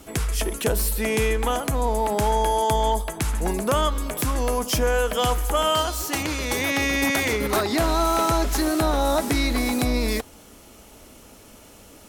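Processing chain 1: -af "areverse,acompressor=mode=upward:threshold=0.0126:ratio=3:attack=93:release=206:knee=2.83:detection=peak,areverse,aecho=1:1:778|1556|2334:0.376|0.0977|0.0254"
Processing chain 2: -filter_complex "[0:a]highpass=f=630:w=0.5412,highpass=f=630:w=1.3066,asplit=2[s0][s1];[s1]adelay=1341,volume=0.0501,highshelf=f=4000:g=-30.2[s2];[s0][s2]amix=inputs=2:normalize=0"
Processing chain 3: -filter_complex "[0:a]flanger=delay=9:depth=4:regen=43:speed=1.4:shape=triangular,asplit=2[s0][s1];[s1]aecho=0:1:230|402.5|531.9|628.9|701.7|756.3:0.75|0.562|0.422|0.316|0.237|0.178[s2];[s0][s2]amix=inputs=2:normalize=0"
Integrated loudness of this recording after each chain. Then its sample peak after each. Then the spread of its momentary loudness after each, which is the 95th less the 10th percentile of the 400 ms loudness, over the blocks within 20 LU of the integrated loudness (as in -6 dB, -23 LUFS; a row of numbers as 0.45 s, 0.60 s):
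-22.5 LUFS, -25.5 LUFS, -23.5 LUFS; -9.5 dBFS, -9.5 dBFS, -9.5 dBFS; 10 LU, 7 LU, 5 LU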